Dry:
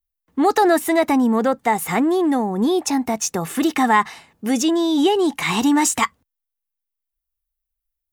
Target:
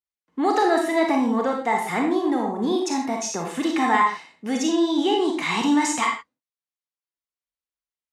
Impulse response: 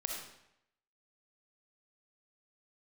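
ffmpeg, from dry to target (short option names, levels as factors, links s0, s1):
-filter_complex "[0:a]highpass=170,lowpass=6900[s0];[1:a]atrim=start_sample=2205,afade=t=out:st=0.33:d=0.01,atrim=end_sample=14994,asetrate=70560,aresample=44100[s1];[s0][s1]afir=irnorm=-1:irlink=0"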